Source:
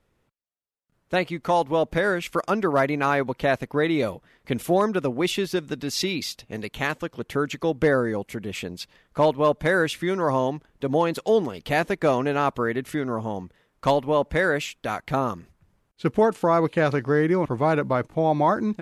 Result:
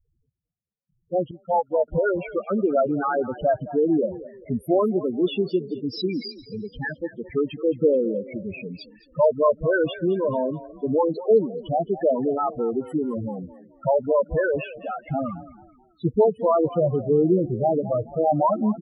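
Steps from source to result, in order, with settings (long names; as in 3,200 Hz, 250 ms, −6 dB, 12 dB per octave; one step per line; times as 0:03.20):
spectral peaks only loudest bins 4
echo with shifted repeats 216 ms, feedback 36%, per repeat +35 Hz, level −16.5 dB
0:01.31–0:01.88: expander for the loud parts 2.5 to 1, over −35 dBFS
level +3.5 dB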